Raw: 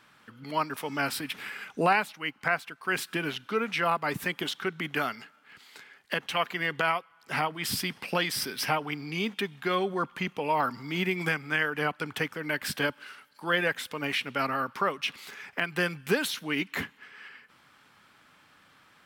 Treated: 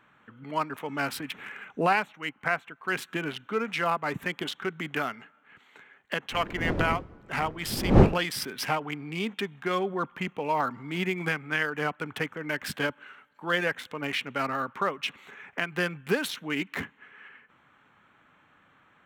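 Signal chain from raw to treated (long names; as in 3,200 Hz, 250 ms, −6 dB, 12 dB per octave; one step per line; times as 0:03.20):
adaptive Wiener filter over 9 samples
0:06.31–0:08.26: wind on the microphone 330 Hz −29 dBFS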